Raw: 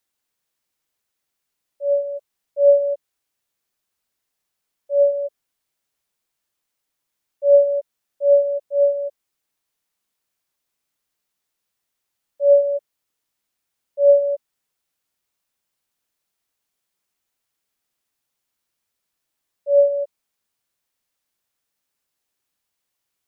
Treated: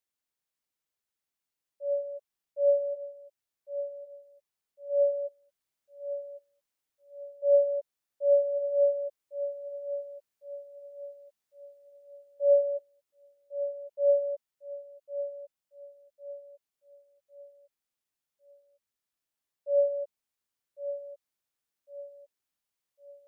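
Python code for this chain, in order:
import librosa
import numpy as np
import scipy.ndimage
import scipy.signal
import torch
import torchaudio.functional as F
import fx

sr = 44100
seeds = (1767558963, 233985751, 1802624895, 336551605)

p1 = fx.rider(x, sr, range_db=10, speed_s=2.0)
p2 = p1 + fx.echo_feedback(p1, sr, ms=1104, feedback_pct=39, wet_db=-11.0, dry=0)
y = p2 * librosa.db_to_amplitude(-7.5)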